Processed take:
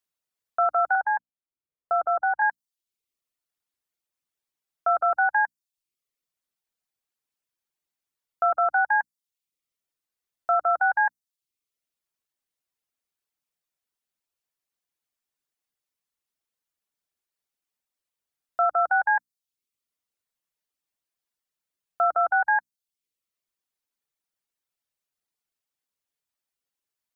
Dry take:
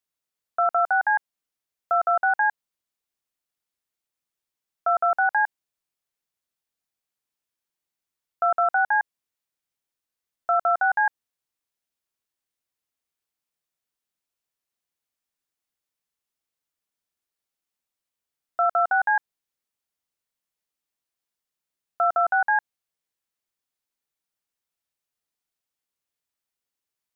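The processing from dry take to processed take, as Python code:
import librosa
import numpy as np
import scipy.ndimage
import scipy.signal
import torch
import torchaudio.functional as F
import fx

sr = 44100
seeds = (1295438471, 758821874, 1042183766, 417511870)

y = fx.hum_notches(x, sr, base_hz=60, count=5)
y = fx.dereverb_blind(y, sr, rt60_s=0.61)
y = fx.lowpass(y, sr, hz=1300.0, slope=12, at=(0.95, 2.42))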